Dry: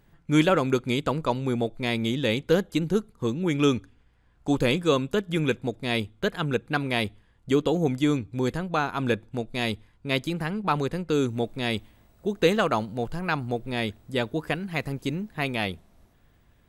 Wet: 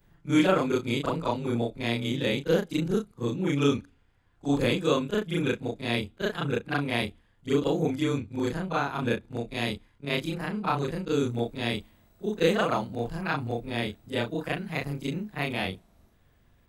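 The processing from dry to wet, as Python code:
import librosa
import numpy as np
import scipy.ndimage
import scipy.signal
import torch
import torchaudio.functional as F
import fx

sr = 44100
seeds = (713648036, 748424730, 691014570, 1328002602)

y = fx.frame_reverse(x, sr, frame_ms=85.0)
y = y * librosa.db_to_amplitude(1.0)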